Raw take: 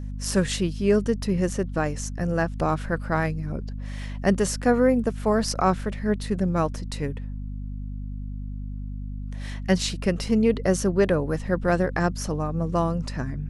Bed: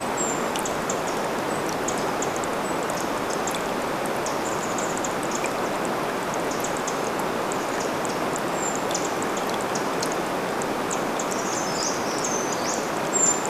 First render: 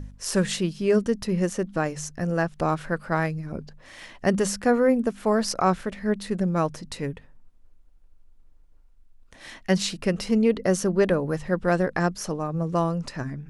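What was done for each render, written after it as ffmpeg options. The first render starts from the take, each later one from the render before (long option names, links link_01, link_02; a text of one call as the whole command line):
ffmpeg -i in.wav -af "bandreject=frequency=50:width_type=h:width=4,bandreject=frequency=100:width_type=h:width=4,bandreject=frequency=150:width_type=h:width=4,bandreject=frequency=200:width_type=h:width=4,bandreject=frequency=250:width_type=h:width=4" out.wav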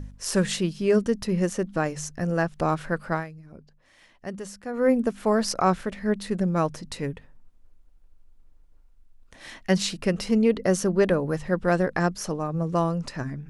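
ffmpeg -i in.wav -filter_complex "[0:a]asplit=3[link_01][link_02][link_03];[link_01]atrim=end=3.25,asetpts=PTS-STARTPTS,afade=type=out:start_time=3.11:duration=0.14:silence=0.223872[link_04];[link_02]atrim=start=3.25:end=4.73,asetpts=PTS-STARTPTS,volume=-13dB[link_05];[link_03]atrim=start=4.73,asetpts=PTS-STARTPTS,afade=type=in:duration=0.14:silence=0.223872[link_06];[link_04][link_05][link_06]concat=n=3:v=0:a=1" out.wav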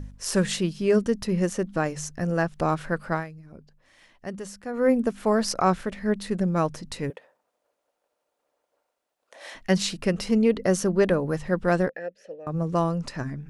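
ffmpeg -i in.wav -filter_complex "[0:a]asettb=1/sr,asplit=3[link_01][link_02][link_03];[link_01]atrim=end=7.104[link_04];[link_02]atrim=start=7.1:end=9.55,asetpts=PTS-STARTPTS,afade=type=in:duration=0.004:curve=qsin,afade=type=out:start_time=2.446:duration=0.004:curve=qsin,highpass=frequency=570:width_type=q:width=3[link_05];[link_03]atrim=start=9.546[link_06];[link_04][link_05]acrossfade=duration=0.004:curve1=hsin:curve2=qsin[link_07];[link_07][link_06]acrossfade=duration=0.004:curve1=qsin:curve2=hsin,asettb=1/sr,asplit=3[link_08][link_09][link_10];[link_08]atrim=end=11.894[link_11];[link_09]atrim=start=11.89:end=12.47,asetpts=PTS-STARTPTS,afade=type=in:duration=0.004:curve=qsin,afade=type=out:start_time=0.576:duration=0.004:curve=qsin,asplit=3[link_12][link_13][link_14];[link_12]bandpass=frequency=530:width_type=q:width=8,volume=0dB[link_15];[link_13]bandpass=frequency=1840:width_type=q:width=8,volume=-6dB[link_16];[link_14]bandpass=frequency=2480:width_type=q:width=8,volume=-9dB[link_17];[link_15][link_16][link_17]amix=inputs=3:normalize=0[link_18];[link_10]atrim=start=12.466[link_19];[link_11][link_18]acrossfade=duration=0.004:curve1=hsin:curve2=qsin[link_20];[link_20][link_19]acrossfade=duration=0.004:curve1=qsin:curve2=hsin" out.wav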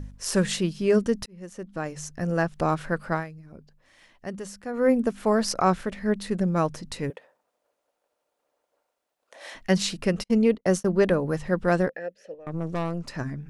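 ffmpeg -i in.wav -filter_complex "[0:a]asplit=3[link_01][link_02][link_03];[link_01]afade=type=out:start_time=10.22:duration=0.02[link_04];[link_02]agate=range=-44dB:threshold=-29dB:ratio=16:release=100:detection=peak,afade=type=in:start_time=10.22:duration=0.02,afade=type=out:start_time=10.91:duration=0.02[link_05];[link_03]afade=type=in:start_time=10.91:duration=0.02[link_06];[link_04][link_05][link_06]amix=inputs=3:normalize=0,asettb=1/sr,asplit=3[link_07][link_08][link_09];[link_07]atrim=end=12.344[link_10];[link_08]atrim=start=12.34:end=13.09,asetpts=PTS-STARTPTS,afade=type=in:duration=0.004:curve=qsin,afade=type=out:start_time=0.746:duration=0.004:curve=qsin,aeval=exprs='(tanh(15.8*val(0)+0.7)-tanh(0.7))/15.8':channel_layout=same[link_11];[link_09]atrim=start=13.086[link_12];[link_10][link_11]acrossfade=duration=0.004:curve1=hsin:curve2=qsin[link_13];[link_13][link_12]acrossfade=duration=0.004:curve1=qsin:curve2=hsin,asplit=2[link_14][link_15];[link_14]atrim=end=1.26,asetpts=PTS-STARTPTS,afade=type=out:start_time=1.256:duration=0.004:curve=hsin[link_16];[link_15]atrim=start=1.26,asetpts=PTS-STARTPTS,afade=type=in:duration=1.11[link_17];[link_16][link_17]concat=n=2:v=0:a=1" out.wav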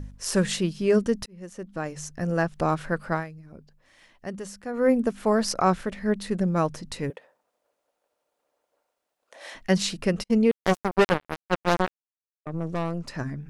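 ffmpeg -i in.wav -filter_complex "[0:a]asettb=1/sr,asplit=3[link_01][link_02][link_03];[link_01]atrim=end=10.514[link_04];[link_02]atrim=start=10.51:end=12.46,asetpts=PTS-STARTPTS,afade=type=in:duration=0.004:curve=qsin,afade=type=out:start_time=1.946:duration=0.004:curve=qsin,acrusher=bits=2:mix=0:aa=0.5[link_05];[link_03]atrim=start=12.456[link_06];[link_04][link_05]acrossfade=duration=0.004:curve1=hsin:curve2=qsin[link_07];[link_07][link_06]acrossfade=duration=0.004:curve1=qsin:curve2=hsin" out.wav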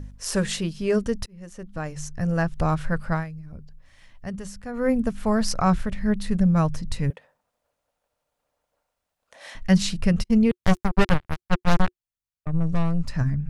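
ffmpeg -i in.wav -af "bandreject=frequency=360:width=12,asubboost=boost=8.5:cutoff=120" out.wav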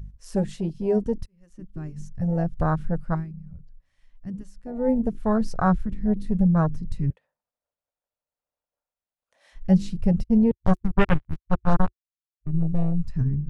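ffmpeg -i in.wav -af "afwtdn=0.0562" out.wav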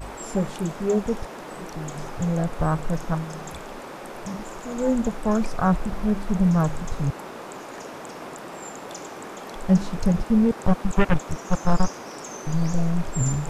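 ffmpeg -i in.wav -i bed.wav -filter_complex "[1:a]volume=-11.5dB[link_01];[0:a][link_01]amix=inputs=2:normalize=0" out.wav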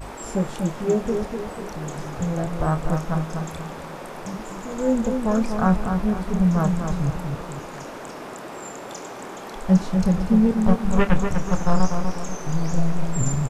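ffmpeg -i in.wav -filter_complex "[0:a]asplit=2[link_01][link_02];[link_02]adelay=27,volume=-10.5dB[link_03];[link_01][link_03]amix=inputs=2:normalize=0,asplit=2[link_04][link_05];[link_05]adelay=245,lowpass=frequency=2000:poles=1,volume=-5.5dB,asplit=2[link_06][link_07];[link_07]adelay=245,lowpass=frequency=2000:poles=1,volume=0.43,asplit=2[link_08][link_09];[link_09]adelay=245,lowpass=frequency=2000:poles=1,volume=0.43,asplit=2[link_10][link_11];[link_11]adelay=245,lowpass=frequency=2000:poles=1,volume=0.43,asplit=2[link_12][link_13];[link_13]adelay=245,lowpass=frequency=2000:poles=1,volume=0.43[link_14];[link_04][link_06][link_08][link_10][link_12][link_14]amix=inputs=6:normalize=0" out.wav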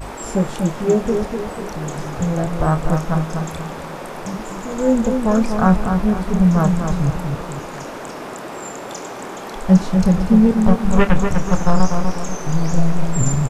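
ffmpeg -i in.wav -af "volume=5dB,alimiter=limit=-2dB:level=0:latency=1" out.wav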